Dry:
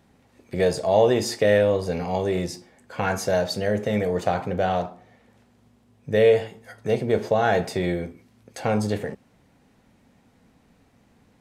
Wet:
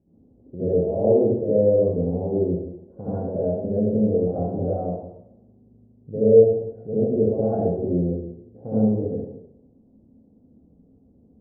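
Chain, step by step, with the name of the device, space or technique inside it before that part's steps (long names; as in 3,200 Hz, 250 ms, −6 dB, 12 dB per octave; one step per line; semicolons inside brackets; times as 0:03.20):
next room (low-pass filter 500 Hz 24 dB per octave; convolution reverb RT60 0.80 s, pre-delay 63 ms, DRR −10.5 dB)
level −7 dB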